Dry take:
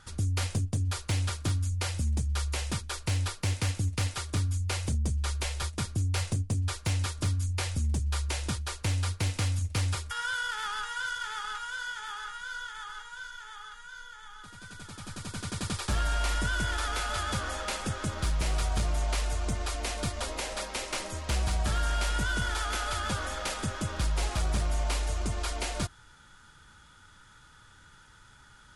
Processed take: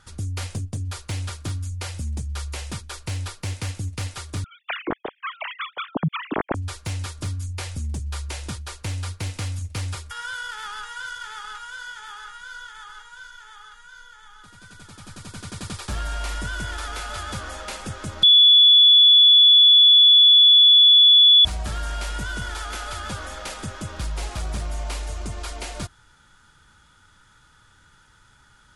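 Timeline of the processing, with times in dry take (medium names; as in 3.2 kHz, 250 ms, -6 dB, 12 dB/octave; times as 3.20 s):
4.44–6.55 s: formants replaced by sine waves
18.23–21.45 s: bleep 3.43 kHz -9 dBFS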